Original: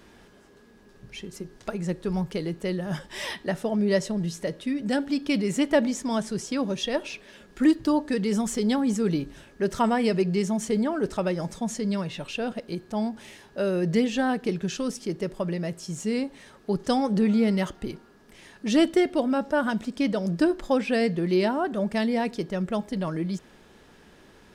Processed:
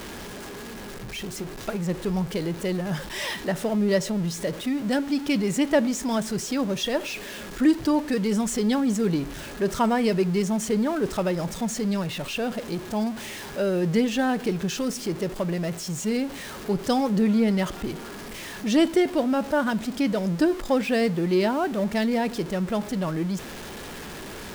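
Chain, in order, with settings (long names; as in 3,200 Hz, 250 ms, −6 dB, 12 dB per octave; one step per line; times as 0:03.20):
converter with a step at zero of −33 dBFS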